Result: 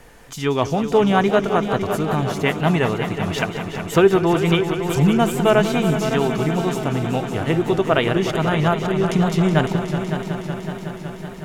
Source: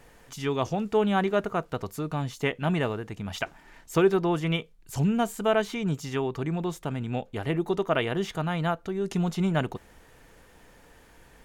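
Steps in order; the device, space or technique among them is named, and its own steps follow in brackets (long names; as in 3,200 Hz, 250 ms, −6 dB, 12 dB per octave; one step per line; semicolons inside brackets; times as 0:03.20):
multi-head tape echo (echo machine with several playback heads 186 ms, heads all three, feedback 72%, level −13 dB; tape wow and flutter)
level +7.5 dB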